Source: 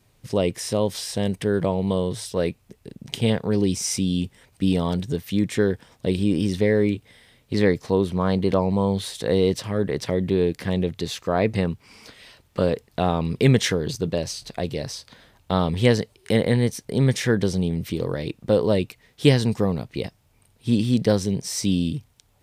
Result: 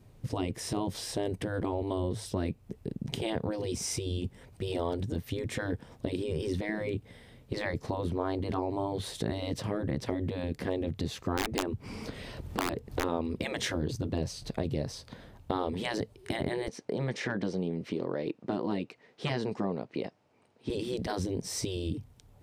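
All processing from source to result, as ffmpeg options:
ffmpeg -i in.wav -filter_complex "[0:a]asettb=1/sr,asplit=3[link_01][link_02][link_03];[link_01]atrim=end=11.374[link_04];[link_02]atrim=start=11.37:end=13.04,asetpts=PTS-STARTPTS,afade=type=in:duration=0.004:curve=qsin,afade=type=out:start_time=1.666:duration=0.004:curve=qsin,lowshelf=frequency=440:gain=5,acompressor=mode=upward:threshold=-34dB:ratio=2.5:attack=3.2:release=140:knee=2.83:detection=peak,aeval=exprs='(mod(2.82*val(0)+1,2)-1)/2.82':channel_layout=same[link_05];[link_03]atrim=start=13.036[link_06];[link_04][link_05]acrossfade=duration=0.004:curve1=hsin:curve2=qsin[link_07];[link_07][link_06]acrossfade=duration=0.004:curve1=qsin:curve2=hsin,asettb=1/sr,asplit=3[link_08][link_09][link_10];[link_08]atrim=end=16.684[link_11];[link_09]atrim=start=16.68:end=20.7,asetpts=PTS-STARTPTS,afade=type=in:duration=0.004:curve=qsin,afade=type=out:start_time=4.016:duration=0.004:curve=qsin,equalizer=frequency=3500:width_type=o:width=0.27:gain=-4,asoftclip=type=hard:threshold=-8.5dB,highpass=340,lowpass=5100[link_12];[link_10]atrim=start=20.696[link_13];[link_11][link_12]acrossfade=duration=0.004:curve1=hsin:curve2=qsin[link_14];[link_14][link_13]acrossfade=duration=0.004:curve1=qsin:curve2=hsin,afftfilt=real='re*lt(hypot(re,im),0.316)':imag='im*lt(hypot(re,im),0.316)':win_size=1024:overlap=0.75,tiltshelf=frequency=970:gain=6.5,acompressor=threshold=-32dB:ratio=2" out.wav

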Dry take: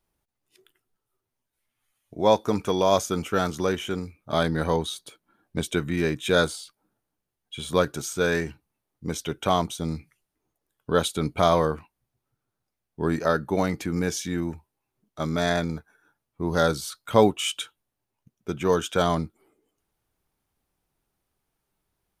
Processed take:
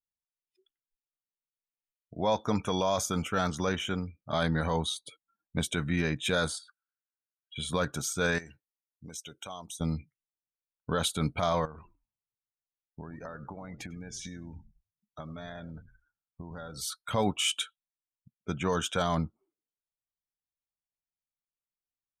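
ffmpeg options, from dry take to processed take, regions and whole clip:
ffmpeg -i in.wav -filter_complex "[0:a]asettb=1/sr,asplit=3[link_01][link_02][link_03];[link_01]atrim=end=6.584[link_04];[link_02]atrim=start=6.58:end=7.56,asetpts=PTS-STARTPTS,afade=type=in:duration=0.004:curve=qsin,afade=type=out:start_time=0.976:duration=0.004:curve=qsin,highpass=frequency=1500:width_type=q:width=7.3,acompressor=threshold=-45dB:ratio=10:attack=3.2:release=140:knee=1:detection=peak[link_05];[link_03]atrim=start=7.556[link_06];[link_04][link_05]acrossfade=duration=0.004:curve1=hsin:curve2=qsin[link_07];[link_07][link_06]acrossfade=duration=0.004:curve1=qsin:curve2=hsin,asettb=1/sr,asplit=3[link_08][link_09][link_10];[link_08]atrim=end=8.384[link_11];[link_09]atrim=start=8.38:end=9.81,asetpts=PTS-STARTPTS,afade=type=in:duration=0.004:curve=qsin,afade=type=out:start_time=1.426:duration=0.004:curve=qsin,bass=frequency=250:gain=-6,treble=frequency=4000:gain=12,acompressor=threshold=-42dB:ratio=3:attack=3.2:release=140:knee=1:detection=peak[link_12];[link_10]atrim=start=9.806[link_13];[link_11][link_12]acrossfade=duration=0.004:curve1=hsin:curve2=qsin[link_14];[link_14][link_13]acrossfade=duration=0.004:curve1=qsin:curve2=hsin,asettb=1/sr,asplit=3[link_15][link_16][link_17];[link_15]atrim=end=11.654[link_18];[link_16]atrim=start=11.65:end=16.81,asetpts=PTS-STARTPTS,afade=type=in:duration=0.004:curve=qsin,afade=type=out:start_time=5.156:duration=0.004:curve=qsin,acompressor=threshold=-35dB:ratio=16:attack=3.2:release=140:knee=1:detection=peak,asplit=5[link_19][link_20][link_21][link_22][link_23];[link_20]adelay=99,afreqshift=-61,volume=-13dB[link_24];[link_21]adelay=198,afreqshift=-122,volume=-19.9dB[link_25];[link_22]adelay=297,afreqshift=-183,volume=-26.9dB[link_26];[link_23]adelay=396,afreqshift=-244,volume=-33.8dB[link_27];[link_19][link_24][link_25][link_26][link_27]amix=inputs=5:normalize=0,atrim=end_sample=227556[link_28];[link_17]atrim=start=16.806[link_29];[link_18][link_28]acrossfade=duration=0.004:curve1=hsin:curve2=qsin[link_30];[link_30][link_29]acrossfade=duration=0.004:curve1=qsin:curve2=hsin,afftdn=noise_reduction=28:noise_floor=-48,equalizer=frequency=370:width=1.9:gain=-8.5,alimiter=limit=-17.5dB:level=0:latency=1:release=27" out.wav

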